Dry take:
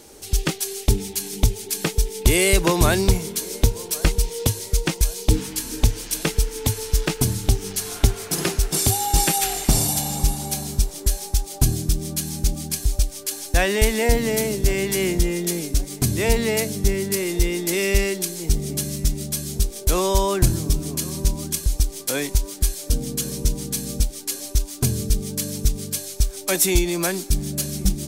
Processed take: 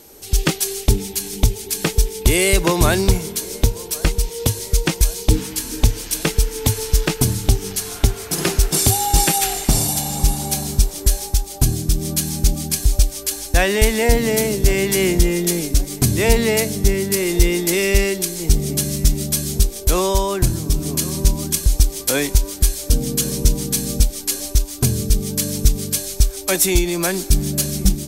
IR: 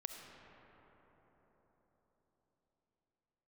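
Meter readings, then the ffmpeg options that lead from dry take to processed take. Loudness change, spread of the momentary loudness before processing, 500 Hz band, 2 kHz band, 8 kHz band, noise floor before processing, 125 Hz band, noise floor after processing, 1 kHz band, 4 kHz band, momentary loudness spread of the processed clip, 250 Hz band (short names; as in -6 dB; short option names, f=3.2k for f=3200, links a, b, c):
+3.5 dB, 7 LU, +3.5 dB, +3.5 dB, +3.5 dB, -37 dBFS, +3.5 dB, -34 dBFS, +3.0 dB, +3.5 dB, 6 LU, +3.5 dB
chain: -filter_complex "[0:a]aeval=exprs='val(0)+0.00447*sin(2*PI*12000*n/s)':c=same,dynaudnorm=f=220:g=3:m=11.5dB,asplit=2[a][b];[1:a]atrim=start_sample=2205,asetrate=79380,aresample=44100[c];[b][c]afir=irnorm=-1:irlink=0,volume=-14.5dB[d];[a][d]amix=inputs=2:normalize=0,volume=-1dB"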